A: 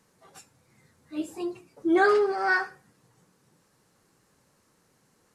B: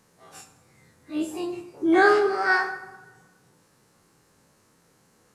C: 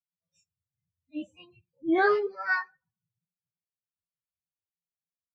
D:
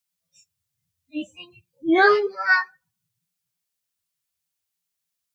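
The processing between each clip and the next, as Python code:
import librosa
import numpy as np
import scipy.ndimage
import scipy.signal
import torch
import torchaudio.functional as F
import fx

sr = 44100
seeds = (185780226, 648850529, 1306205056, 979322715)

y1 = fx.spec_dilate(x, sr, span_ms=60)
y1 = fx.rev_plate(y1, sr, seeds[0], rt60_s=1.2, hf_ratio=0.65, predelay_ms=0, drr_db=9.0)
y2 = fx.bin_expand(y1, sr, power=3.0)
y2 = scipy.signal.sosfilt(scipy.signal.butter(4, 4500.0, 'lowpass', fs=sr, output='sos'), y2)
y2 = y2 * 10.0 ** (-2.0 / 20.0)
y3 = fx.high_shelf(y2, sr, hz=2200.0, db=10.0)
y3 = y3 * 10.0 ** (5.5 / 20.0)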